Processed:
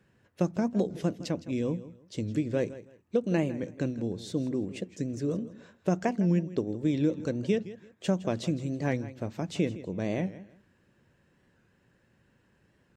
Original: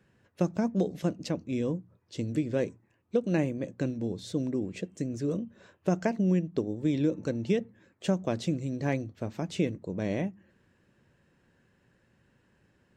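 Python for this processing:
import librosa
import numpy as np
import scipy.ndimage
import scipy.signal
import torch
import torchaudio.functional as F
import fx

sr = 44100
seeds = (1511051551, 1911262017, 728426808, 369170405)

y = fx.echo_feedback(x, sr, ms=162, feedback_pct=24, wet_db=-16.0)
y = fx.record_warp(y, sr, rpm=45.0, depth_cents=100.0)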